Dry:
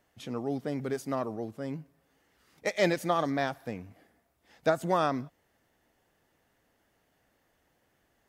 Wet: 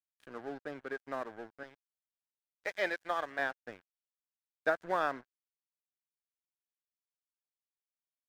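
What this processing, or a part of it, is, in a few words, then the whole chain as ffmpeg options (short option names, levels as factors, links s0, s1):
pocket radio on a weak battery: -filter_complex "[0:a]asettb=1/sr,asplit=3[s0][s1][s2];[s0]atrim=end=1.634[s3];[s1]atrim=start=1.63:end=3.39,asetpts=PTS-STARTPTS,afade=t=in:d=0.004:c=qsin,afade=t=out:st=1.756:d=0.004:c=qsin,highpass=f=500:p=1[s4];[s2]atrim=start=3.386[s5];[s3][s4]acrossfade=d=0.004:c1=hsin:c2=qsin[s6];[s6][s5]acrossfade=d=0.004:c1=qsin:c2=hsin,highpass=340,lowpass=3600,aeval=exprs='sgn(val(0))*max(abs(val(0))-0.00596,0)':c=same,equalizer=f=1600:t=o:w=0.3:g=11,volume=0.596"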